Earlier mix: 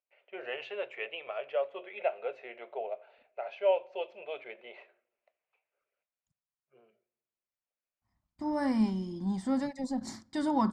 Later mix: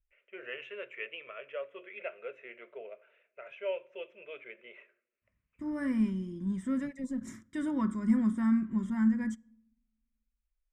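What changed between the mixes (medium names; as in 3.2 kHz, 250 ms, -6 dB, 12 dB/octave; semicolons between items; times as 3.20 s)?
second voice: entry -2.80 s; master: add static phaser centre 1.9 kHz, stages 4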